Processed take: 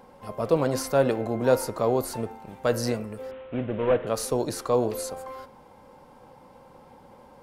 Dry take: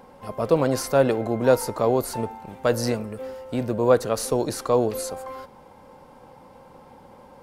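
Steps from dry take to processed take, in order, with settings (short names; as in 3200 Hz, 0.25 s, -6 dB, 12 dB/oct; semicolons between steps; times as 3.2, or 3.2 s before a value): 3.31–4.07 CVSD 16 kbps; de-hum 88.41 Hz, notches 34; gain -2.5 dB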